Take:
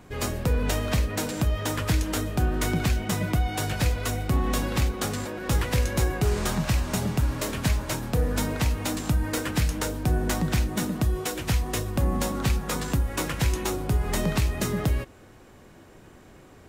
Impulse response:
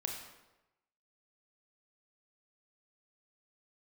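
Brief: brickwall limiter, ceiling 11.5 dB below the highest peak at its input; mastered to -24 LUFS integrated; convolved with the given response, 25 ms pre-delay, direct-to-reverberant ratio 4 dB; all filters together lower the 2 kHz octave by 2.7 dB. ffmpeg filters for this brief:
-filter_complex "[0:a]equalizer=f=2000:t=o:g=-3.5,alimiter=limit=0.0631:level=0:latency=1,asplit=2[s0][s1];[1:a]atrim=start_sample=2205,adelay=25[s2];[s1][s2]afir=irnorm=-1:irlink=0,volume=0.562[s3];[s0][s3]amix=inputs=2:normalize=0,volume=2.51"

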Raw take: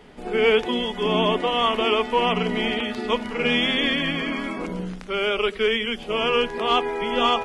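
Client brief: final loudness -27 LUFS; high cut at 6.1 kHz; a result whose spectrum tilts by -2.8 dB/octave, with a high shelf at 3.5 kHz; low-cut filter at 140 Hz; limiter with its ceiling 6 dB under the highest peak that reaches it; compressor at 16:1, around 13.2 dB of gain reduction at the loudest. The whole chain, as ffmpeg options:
-af "highpass=140,lowpass=6100,highshelf=f=3500:g=-8.5,acompressor=threshold=0.0398:ratio=16,volume=2.37,alimiter=limit=0.126:level=0:latency=1"

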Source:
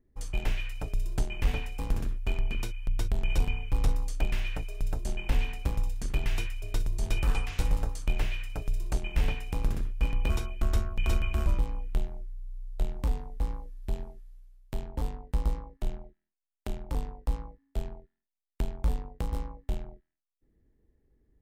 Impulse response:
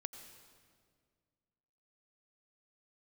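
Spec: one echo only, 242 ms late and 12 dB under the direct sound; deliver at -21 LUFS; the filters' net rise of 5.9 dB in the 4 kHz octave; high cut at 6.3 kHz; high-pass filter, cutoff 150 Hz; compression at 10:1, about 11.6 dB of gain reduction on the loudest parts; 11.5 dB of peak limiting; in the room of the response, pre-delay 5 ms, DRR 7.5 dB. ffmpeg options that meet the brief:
-filter_complex "[0:a]highpass=150,lowpass=6300,equalizer=f=4000:t=o:g=9,acompressor=threshold=0.00631:ratio=10,alimiter=level_in=2.99:limit=0.0631:level=0:latency=1,volume=0.335,aecho=1:1:242:0.251,asplit=2[s0][s1];[1:a]atrim=start_sample=2205,adelay=5[s2];[s1][s2]afir=irnorm=-1:irlink=0,volume=0.596[s3];[s0][s3]amix=inputs=2:normalize=0,volume=23.7"

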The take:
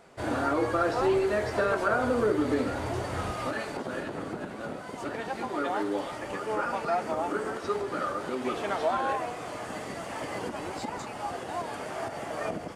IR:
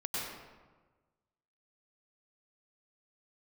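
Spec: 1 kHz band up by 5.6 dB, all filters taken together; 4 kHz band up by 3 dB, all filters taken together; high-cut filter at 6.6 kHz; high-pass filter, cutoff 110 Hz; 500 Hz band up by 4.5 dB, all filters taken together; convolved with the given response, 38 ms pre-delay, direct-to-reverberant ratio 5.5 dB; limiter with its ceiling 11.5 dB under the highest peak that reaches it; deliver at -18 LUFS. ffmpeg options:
-filter_complex "[0:a]highpass=110,lowpass=6600,equalizer=f=500:t=o:g=4,equalizer=f=1000:t=o:g=6,equalizer=f=4000:t=o:g=4,alimiter=limit=0.0794:level=0:latency=1,asplit=2[s0][s1];[1:a]atrim=start_sample=2205,adelay=38[s2];[s1][s2]afir=irnorm=-1:irlink=0,volume=0.316[s3];[s0][s3]amix=inputs=2:normalize=0,volume=3.98"

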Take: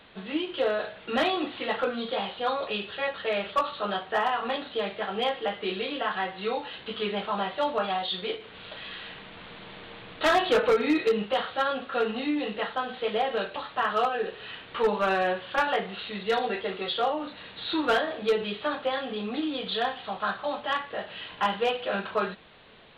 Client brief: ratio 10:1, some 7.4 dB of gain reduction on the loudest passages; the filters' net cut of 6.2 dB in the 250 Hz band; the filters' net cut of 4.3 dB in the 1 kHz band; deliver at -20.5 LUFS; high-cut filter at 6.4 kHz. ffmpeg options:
-af "lowpass=6400,equalizer=f=250:t=o:g=-8,equalizer=f=1000:t=o:g=-5.5,acompressor=threshold=0.0355:ratio=10,volume=5.31"

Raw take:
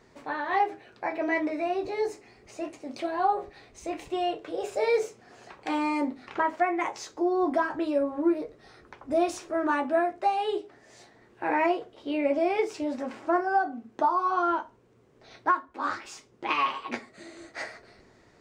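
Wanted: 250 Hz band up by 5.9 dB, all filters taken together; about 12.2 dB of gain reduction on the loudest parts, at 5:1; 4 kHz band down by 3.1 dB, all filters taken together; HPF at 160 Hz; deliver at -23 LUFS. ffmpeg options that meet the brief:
-af "highpass=160,equalizer=f=250:t=o:g=9,equalizer=f=4000:t=o:g=-4.5,acompressor=threshold=0.0398:ratio=5,volume=3.16"

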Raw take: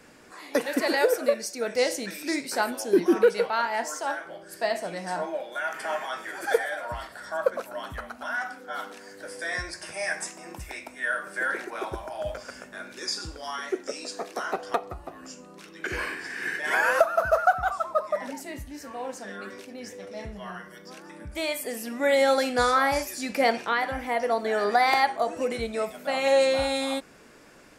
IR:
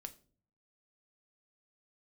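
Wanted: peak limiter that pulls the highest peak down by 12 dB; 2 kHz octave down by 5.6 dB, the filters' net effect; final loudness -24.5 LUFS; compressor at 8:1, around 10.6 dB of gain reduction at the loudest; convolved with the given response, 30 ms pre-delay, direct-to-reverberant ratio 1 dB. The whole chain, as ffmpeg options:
-filter_complex "[0:a]equalizer=f=2000:t=o:g=-7.5,acompressor=threshold=0.0501:ratio=8,alimiter=level_in=1.12:limit=0.0631:level=0:latency=1,volume=0.891,asplit=2[s0][s1];[1:a]atrim=start_sample=2205,adelay=30[s2];[s1][s2]afir=irnorm=-1:irlink=0,volume=1.58[s3];[s0][s3]amix=inputs=2:normalize=0,volume=2.66"

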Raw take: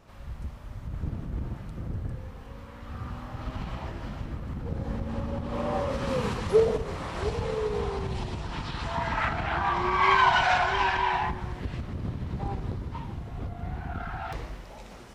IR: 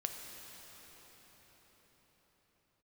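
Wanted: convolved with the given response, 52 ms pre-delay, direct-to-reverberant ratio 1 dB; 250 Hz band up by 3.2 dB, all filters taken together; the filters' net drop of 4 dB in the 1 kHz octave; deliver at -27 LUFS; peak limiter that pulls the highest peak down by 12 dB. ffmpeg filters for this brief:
-filter_complex "[0:a]equalizer=f=250:t=o:g=4.5,equalizer=f=1000:t=o:g=-5,alimiter=limit=0.0794:level=0:latency=1,asplit=2[s0][s1];[1:a]atrim=start_sample=2205,adelay=52[s2];[s1][s2]afir=irnorm=-1:irlink=0,volume=0.841[s3];[s0][s3]amix=inputs=2:normalize=0,volume=1.58"

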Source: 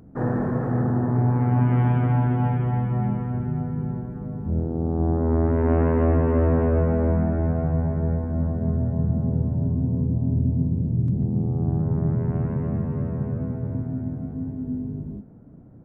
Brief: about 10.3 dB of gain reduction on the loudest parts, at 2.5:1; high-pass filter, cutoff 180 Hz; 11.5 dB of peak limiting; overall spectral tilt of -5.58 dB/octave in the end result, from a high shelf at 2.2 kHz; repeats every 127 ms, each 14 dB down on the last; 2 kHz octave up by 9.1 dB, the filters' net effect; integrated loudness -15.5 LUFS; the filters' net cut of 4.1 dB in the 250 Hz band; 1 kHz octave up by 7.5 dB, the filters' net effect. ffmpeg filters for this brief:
-af "highpass=180,equalizer=f=250:t=o:g=-3.5,equalizer=f=1000:t=o:g=8,equalizer=f=2000:t=o:g=7,highshelf=f=2200:g=3.5,acompressor=threshold=0.0251:ratio=2.5,alimiter=level_in=1.58:limit=0.0631:level=0:latency=1,volume=0.631,aecho=1:1:127|254:0.2|0.0399,volume=11.9"

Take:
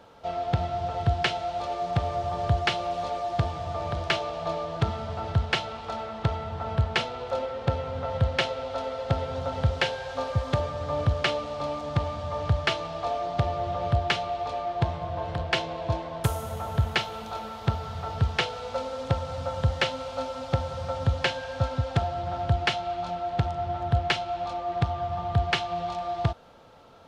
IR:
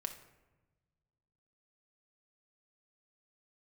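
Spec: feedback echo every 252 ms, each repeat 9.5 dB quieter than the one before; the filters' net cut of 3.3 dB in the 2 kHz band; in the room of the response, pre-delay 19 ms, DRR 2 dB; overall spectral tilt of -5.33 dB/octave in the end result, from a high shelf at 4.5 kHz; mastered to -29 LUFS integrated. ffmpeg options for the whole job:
-filter_complex "[0:a]equalizer=f=2000:t=o:g=-5.5,highshelf=f=4500:g=6.5,aecho=1:1:252|504|756|1008:0.335|0.111|0.0365|0.012,asplit=2[s0][s1];[1:a]atrim=start_sample=2205,adelay=19[s2];[s1][s2]afir=irnorm=-1:irlink=0,volume=0.891[s3];[s0][s3]amix=inputs=2:normalize=0,volume=0.841"

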